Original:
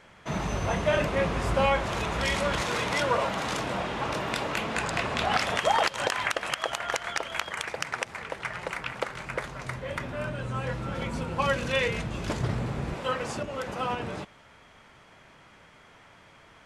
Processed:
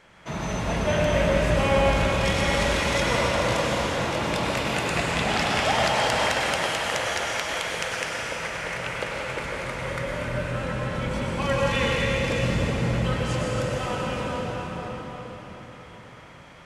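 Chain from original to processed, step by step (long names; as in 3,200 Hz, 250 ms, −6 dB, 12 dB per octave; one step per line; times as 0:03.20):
convolution reverb RT60 4.9 s, pre-delay 91 ms, DRR −4.5 dB
dynamic equaliser 1,100 Hz, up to −4 dB, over −33 dBFS, Q 1.2
hum removal 48.33 Hz, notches 36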